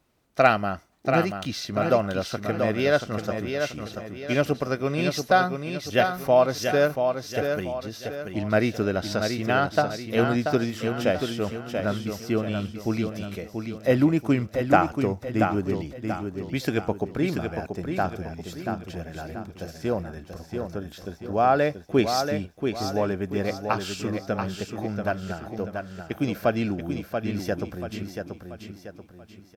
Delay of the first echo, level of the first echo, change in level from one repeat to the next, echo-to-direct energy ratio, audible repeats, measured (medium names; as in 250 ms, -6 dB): 684 ms, -6.0 dB, -7.5 dB, -5.0 dB, 4